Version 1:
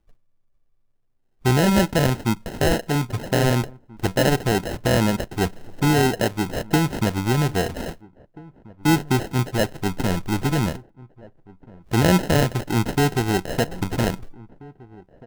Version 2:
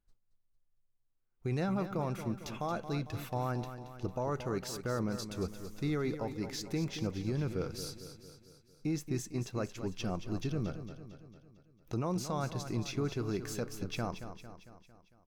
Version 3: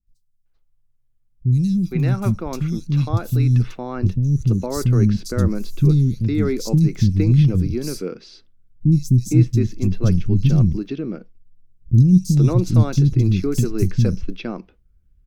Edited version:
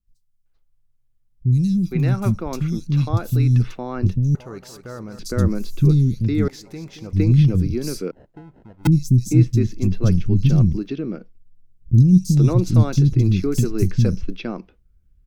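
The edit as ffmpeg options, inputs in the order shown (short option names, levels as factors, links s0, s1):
-filter_complex "[1:a]asplit=2[s0][s1];[2:a]asplit=4[s2][s3][s4][s5];[s2]atrim=end=4.352[s6];[s0]atrim=start=4.348:end=5.192[s7];[s3]atrim=start=5.188:end=6.482[s8];[s1]atrim=start=6.478:end=7.132[s9];[s4]atrim=start=7.128:end=8.112[s10];[0:a]atrim=start=8.108:end=8.872[s11];[s5]atrim=start=8.868[s12];[s6][s7]acrossfade=d=0.004:c1=hsin:c2=hsin[s13];[s13][s8]acrossfade=d=0.004:c1=hsin:c2=hsin[s14];[s14][s9]acrossfade=d=0.004:c1=hsin:c2=hsin[s15];[s15][s10]acrossfade=d=0.004:c1=hsin:c2=hsin[s16];[s16][s11]acrossfade=d=0.004:c1=hsin:c2=hsin[s17];[s17][s12]acrossfade=d=0.004:c1=hsin:c2=hsin"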